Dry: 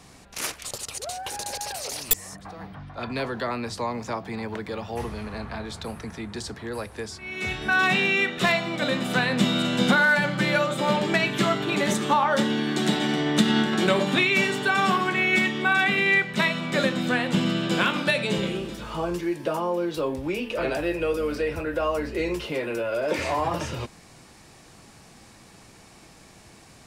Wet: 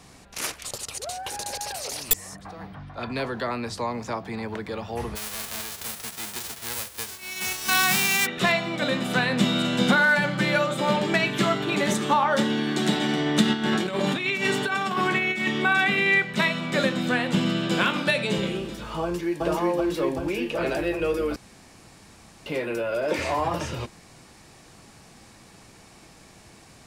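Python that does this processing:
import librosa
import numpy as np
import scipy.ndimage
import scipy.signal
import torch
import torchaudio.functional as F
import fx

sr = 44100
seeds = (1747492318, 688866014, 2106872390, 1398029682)

y = fx.envelope_flatten(x, sr, power=0.1, at=(5.15, 8.25), fade=0.02)
y = fx.over_compress(y, sr, threshold_db=-24.0, ratio=-0.5, at=(13.53, 15.66))
y = fx.echo_throw(y, sr, start_s=19.02, length_s=0.4, ms=380, feedback_pct=75, wet_db=0.0)
y = fx.edit(y, sr, fx.room_tone_fill(start_s=21.36, length_s=1.1), tone=tone)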